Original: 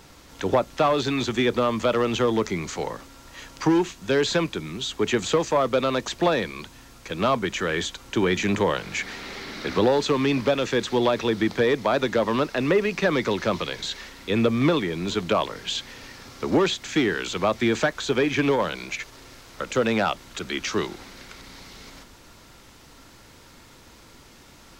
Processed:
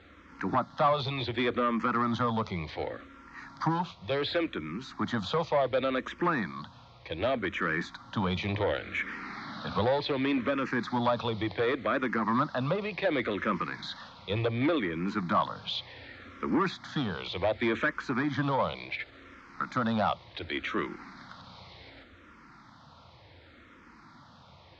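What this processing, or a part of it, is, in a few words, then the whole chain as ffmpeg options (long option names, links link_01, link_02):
barber-pole phaser into a guitar amplifier: -filter_complex "[0:a]asplit=2[link_01][link_02];[link_02]afreqshift=-0.68[link_03];[link_01][link_03]amix=inputs=2:normalize=1,asoftclip=type=tanh:threshold=-19dB,highpass=76,equalizer=frequency=86:width_type=q:width=4:gain=5,equalizer=frequency=410:width_type=q:width=4:gain=-8,equalizer=frequency=1200:width_type=q:width=4:gain=4,equalizer=frequency=2800:width_type=q:width=4:gain=-7,lowpass=frequency=3900:width=0.5412,lowpass=frequency=3900:width=1.3066"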